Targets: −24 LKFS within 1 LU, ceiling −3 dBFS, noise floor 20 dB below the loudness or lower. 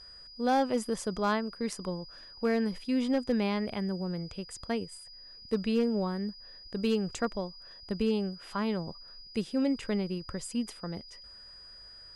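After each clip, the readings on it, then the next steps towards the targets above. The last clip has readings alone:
share of clipped samples 0.3%; peaks flattened at −20.0 dBFS; interfering tone 4,900 Hz; level of the tone −48 dBFS; integrated loudness −32.0 LKFS; sample peak −20.0 dBFS; target loudness −24.0 LKFS
→ clipped peaks rebuilt −20 dBFS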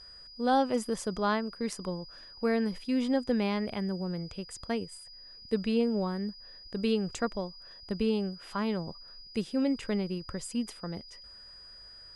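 share of clipped samples 0.0%; interfering tone 4,900 Hz; level of the tone −48 dBFS
→ notch filter 4,900 Hz, Q 30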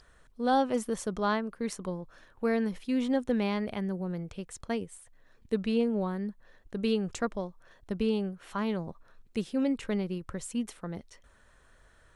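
interfering tone none found; integrated loudness −32.0 LKFS; sample peak −15.5 dBFS; target loudness −24.0 LKFS
→ level +8 dB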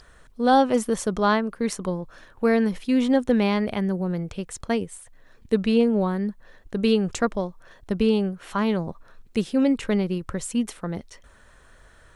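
integrated loudness −24.0 LKFS; sample peak −7.5 dBFS; background noise floor −53 dBFS

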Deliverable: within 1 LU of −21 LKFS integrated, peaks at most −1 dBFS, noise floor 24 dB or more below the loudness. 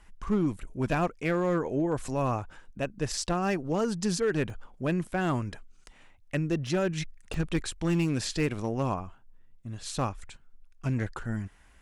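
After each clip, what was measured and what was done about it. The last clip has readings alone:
share of clipped samples 0.9%; peaks flattened at −20.0 dBFS; number of dropouts 3; longest dropout 1.9 ms; integrated loudness −30.5 LKFS; sample peak −20.0 dBFS; target loudness −21.0 LKFS
→ clipped peaks rebuilt −20 dBFS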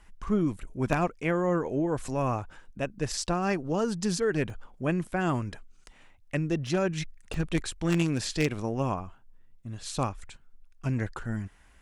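share of clipped samples 0.0%; number of dropouts 3; longest dropout 1.9 ms
→ repair the gap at 0:04.50/0:06.67/0:07.34, 1.9 ms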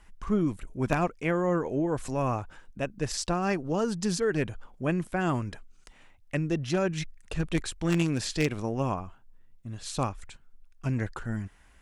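number of dropouts 0; integrated loudness −30.0 LKFS; sample peak −11.0 dBFS; target loudness −21.0 LKFS
→ level +9 dB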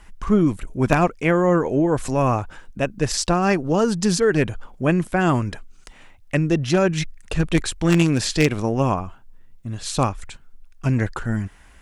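integrated loudness −21.0 LKFS; sample peak −2.0 dBFS; background noise floor −48 dBFS

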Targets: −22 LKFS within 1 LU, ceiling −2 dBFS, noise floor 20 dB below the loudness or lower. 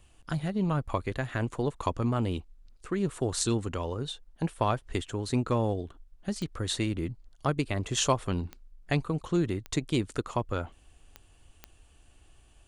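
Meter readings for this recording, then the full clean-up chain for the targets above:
number of clicks 5; integrated loudness −31.0 LKFS; sample peak −10.0 dBFS; target loudness −22.0 LKFS
→ click removal
level +9 dB
brickwall limiter −2 dBFS

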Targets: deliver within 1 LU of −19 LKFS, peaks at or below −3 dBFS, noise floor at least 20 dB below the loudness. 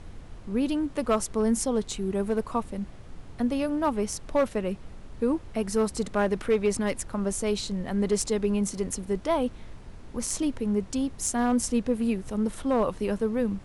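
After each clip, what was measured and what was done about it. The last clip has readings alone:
share of clipped samples 0.4%; peaks flattened at −16.5 dBFS; background noise floor −45 dBFS; target noise floor −48 dBFS; integrated loudness −28.0 LKFS; sample peak −16.5 dBFS; target loudness −19.0 LKFS
→ clipped peaks rebuilt −16.5 dBFS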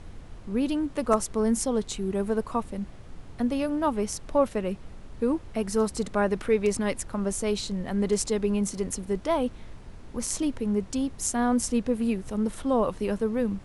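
share of clipped samples 0.0%; background noise floor −45 dBFS; target noise floor −48 dBFS
→ noise reduction from a noise print 6 dB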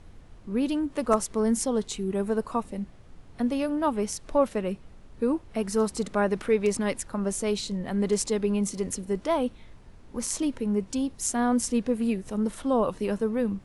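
background noise floor −50 dBFS; integrated loudness −27.5 LKFS; sample peak −8.5 dBFS; target loudness −19.0 LKFS
→ level +8.5 dB
brickwall limiter −3 dBFS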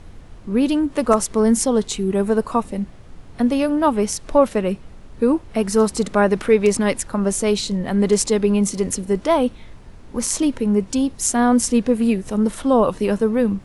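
integrated loudness −19.0 LKFS; sample peak −3.0 dBFS; background noise floor −42 dBFS

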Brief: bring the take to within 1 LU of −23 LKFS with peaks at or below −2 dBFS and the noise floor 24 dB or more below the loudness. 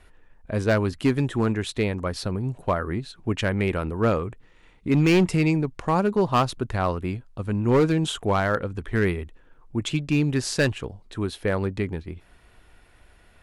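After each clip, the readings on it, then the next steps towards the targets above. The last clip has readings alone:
share of clipped samples 1.2%; peaks flattened at −14.0 dBFS; integrated loudness −24.5 LKFS; sample peak −14.0 dBFS; target loudness −23.0 LKFS
→ clipped peaks rebuilt −14 dBFS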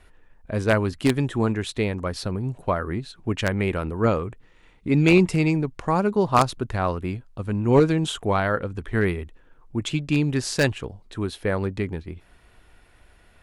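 share of clipped samples 0.0%; integrated loudness −24.0 LKFS; sample peak −5.0 dBFS; target loudness −23.0 LKFS
→ level +1 dB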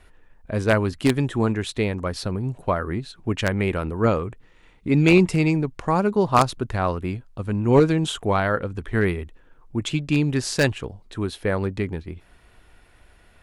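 integrated loudness −23.0 LKFS; sample peak −4.0 dBFS; background noise floor −55 dBFS

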